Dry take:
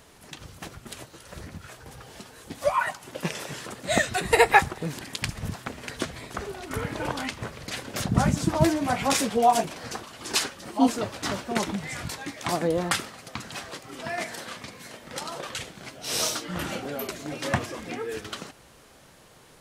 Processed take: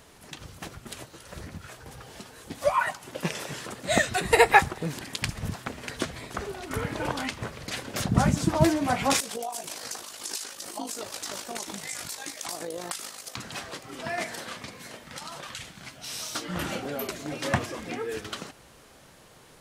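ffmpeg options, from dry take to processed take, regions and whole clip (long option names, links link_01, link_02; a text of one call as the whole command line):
ffmpeg -i in.wav -filter_complex "[0:a]asettb=1/sr,asplit=3[link_01][link_02][link_03];[link_01]atrim=end=9.204[link_04];[link_02]atrim=start=9.2:end=13.37,asetpts=PTS-STARTPTS,afade=type=in:duration=0.004:curve=qsin,afade=type=out:start_time=4.166:duration=0.004:curve=qsin,bass=frequency=250:gain=-12,treble=frequency=4000:gain=13,acompressor=threshold=-28dB:ratio=10:attack=3.2:release=140:knee=1:detection=peak,tremolo=f=52:d=0.571[link_05];[link_03]atrim=start=13.366[link_06];[link_04][link_05]acrossfade=duration=0.004:curve1=hsin:curve2=qsin[link_07];[link_07][link_06]acrossfade=duration=0.004:curve1=qsin:curve2=hsin,asettb=1/sr,asplit=3[link_08][link_09][link_10];[link_08]atrim=end=15.034[link_11];[link_09]atrim=start=15.03:end=16.35,asetpts=PTS-STARTPTS,afade=type=in:duration=0.004:curve=qsin,afade=type=out:start_time=1.316:duration=0.004:curve=qsin,equalizer=frequency=440:width=1:gain=-9.5,acompressor=threshold=-35dB:ratio=3:attack=3.2:release=140:knee=1:detection=peak[link_12];[link_10]atrim=start=16.346[link_13];[link_11][link_12]acrossfade=duration=0.004:curve1=hsin:curve2=qsin[link_14];[link_14][link_13]acrossfade=duration=0.004:curve1=qsin:curve2=hsin" out.wav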